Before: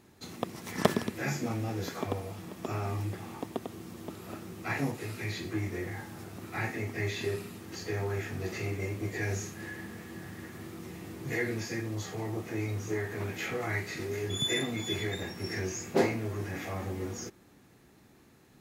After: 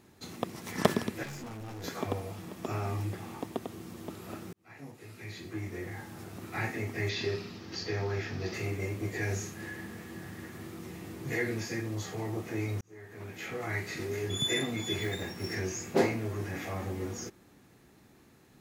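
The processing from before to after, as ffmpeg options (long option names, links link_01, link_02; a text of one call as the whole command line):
ffmpeg -i in.wav -filter_complex "[0:a]asettb=1/sr,asplit=3[link_01][link_02][link_03];[link_01]atrim=end=1.234[link_04];[link_02]atrim=start=1.23:end=1.84,asetpts=PTS-STARTPTS,afade=type=in:duration=0.004:curve=qsin,afade=type=out:start_time=0.606:duration=0.004:curve=qsin,aeval=exprs='(tanh(100*val(0)+0.3)-tanh(0.3))/100':channel_layout=same[link_05];[link_03]atrim=start=1.836[link_06];[link_04][link_05]acrossfade=duration=0.004:curve1=hsin:curve2=qsin[link_07];[link_07][link_06]acrossfade=duration=0.004:curve1=qsin:curve2=hsin,asettb=1/sr,asplit=3[link_08][link_09][link_10];[link_08]atrim=end=7.094[link_11];[link_09]atrim=start=7.09:end=8.54,asetpts=PTS-STARTPTS,afade=type=in:duration=0.004:curve=qsin,afade=type=out:start_time=1.446:duration=0.004:curve=qsin,highshelf=frequency=6800:width_type=q:width=3:gain=-10.5[link_12];[link_10]atrim=start=8.536[link_13];[link_11][link_12]acrossfade=duration=0.004:curve1=hsin:curve2=qsin[link_14];[link_14][link_13]acrossfade=duration=0.004:curve1=qsin:curve2=hsin,asettb=1/sr,asplit=3[link_15][link_16][link_17];[link_15]atrim=end=15.014[link_18];[link_16]atrim=start=15.01:end=15.55,asetpts=PTS-STARTPTS,afade=type=in:duration=0.004:curve=qsin,afade=type=out:start_time=0.536:duration=0.004:curve=qsin,acrusher=bits=5:mode=log:mix=0:aa=0.000001[link_19];[link_17]atrim=start=15.546[link_20];[link_18][link_19]acrossfade=duration=0.004:curve1=hsin:curve2=qsin[link_21];[link_21][link_20]acrossfade=duration=0.004:curve1=qsin:curve2=hsin,asplit=3[link_22][link_23][link_24];[link_22]atrim=end=4.53,asetpts=PTS-STARTPTS,afade=type=out:start_time=4.526:duration=0.004:curve=hsin[link_25];[link_23]atrim=start=4.53:end=12.81,asetpts=PTS-STARTPTS,afade=type=in:duration=1.81,afade=type=out:start_time=8.276:duration=0.004:curve=hsin[link_26];[link_24]atrim=start=12.81,asetpts=PTS-STARTPTS,afade=type=in:duration=1.1[link_27];[link_25][link_26][link_27]concat=n=3:v=0:a=1" out.wav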